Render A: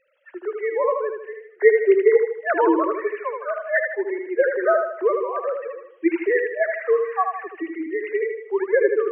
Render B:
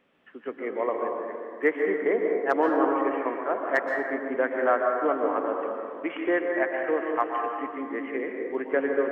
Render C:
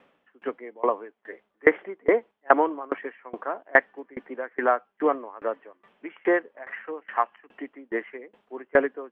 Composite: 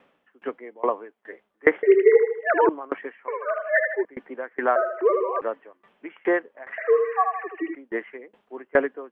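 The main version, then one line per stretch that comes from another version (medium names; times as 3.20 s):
C
1.83–2.69 s: from A
3.28–4.05 s: from A
4.76–5.41 s: from A
6.78–7.75 s: from A
not used: B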